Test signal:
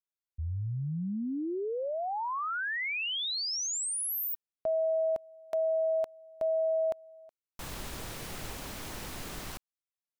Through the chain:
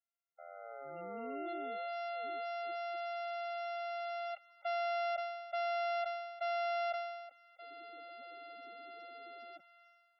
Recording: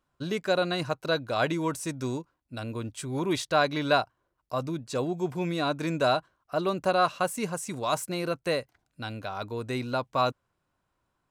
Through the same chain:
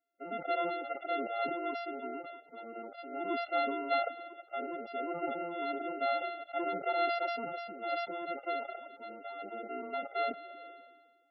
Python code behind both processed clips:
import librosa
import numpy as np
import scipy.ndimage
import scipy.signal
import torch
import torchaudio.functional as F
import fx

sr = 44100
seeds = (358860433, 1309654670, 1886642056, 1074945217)

y = np.r_[np.sort(x[:len(x) // 64 * 64].reshape(-1, 64), axis=1).ravel(), x[len(x) // 64 * 64:]]
y = scipy.signal.sosfilt(scipy.signal.butter(4, 270.0, 'highpass', fs=sr, output='sos'), y)
y = fx.high_shelf(y, sr, hz=6800.0, db=-9.5)
y = fx.spec_topn(y, sr, count=16)
y = fx.sustainer(y, sr, db_per_s=41.0)
y = y * librosa.db_to_amplitude(-6.5)